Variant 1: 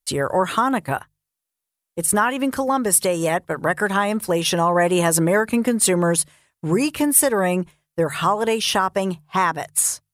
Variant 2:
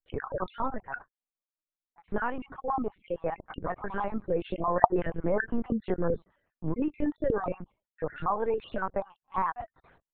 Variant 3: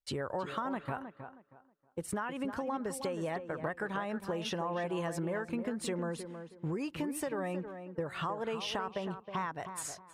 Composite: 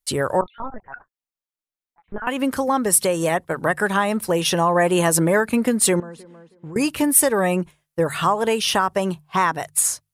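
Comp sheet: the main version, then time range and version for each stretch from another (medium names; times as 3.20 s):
1
0.41–2.27 s: from 2
6.00–6.76 s: from 3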